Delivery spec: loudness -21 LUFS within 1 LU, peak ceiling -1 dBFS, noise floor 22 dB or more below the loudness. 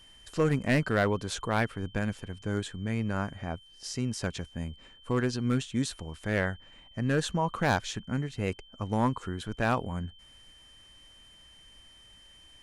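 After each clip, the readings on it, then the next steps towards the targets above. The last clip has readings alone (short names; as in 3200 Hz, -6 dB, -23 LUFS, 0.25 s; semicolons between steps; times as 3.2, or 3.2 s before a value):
clipped 0.4%; flat tops at -18.0 dBFS; steady tone 3100 Hz; tone level -54 dBFS; loudness -31.0 LUFS; peak -18.0 dBFS; loudness target -21.0 LUFS
-> clip repair -18 dBFS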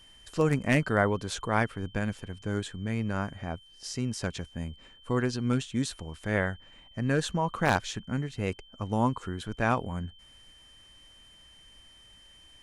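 clipped 0.0%; steady tone 3100 Hz; tone level -54 dBFS
-> notch 3100 Hz, Q 30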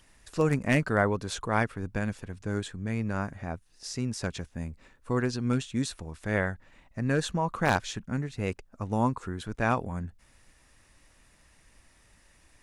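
steady tone none; loudness -30.5 LUFS; peak -9.0 dBFS; loudness target -21.0 LUFS
-> gain +9.5 dB; limiter -1 dBFS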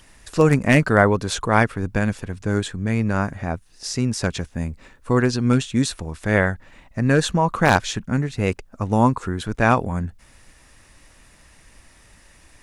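loudness -21.0 LUFS; peak -1.0 dBFS; noise floor -52 dBFS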